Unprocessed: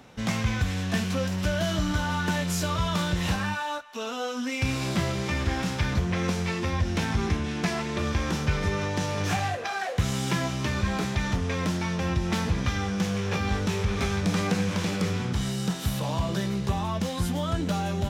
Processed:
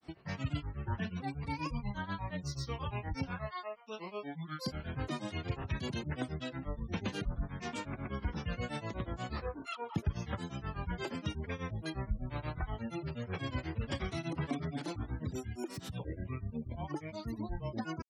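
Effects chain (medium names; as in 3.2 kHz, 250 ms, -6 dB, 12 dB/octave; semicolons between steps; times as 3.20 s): spectral gate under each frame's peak -25 dB strong; granulator 154 ms, grains 8.3 per s, pitch spread up and down by 12 st; trim -8 dB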